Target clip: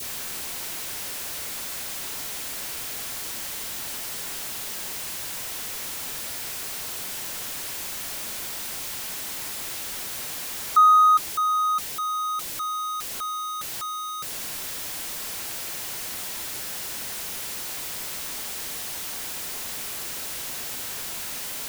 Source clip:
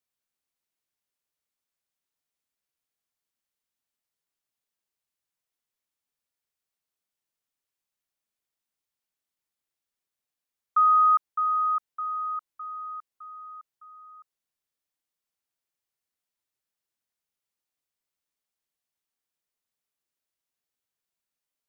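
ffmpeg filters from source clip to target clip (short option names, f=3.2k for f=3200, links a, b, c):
-af "aeval=exprs='val(0)+0.5*0.0299*sgn(val(0))':c=same,adynamicequalizer=threshold=0.00891:dfrequency=1200:dqfactor=0.97:tfrequency=1200:tqfactor=0.97:attack=5:release=100:ratio=0.375:range=2.5:mode=cutabove:tftype=bell,bandreject=f=1.2k:w=29,volume=5dB"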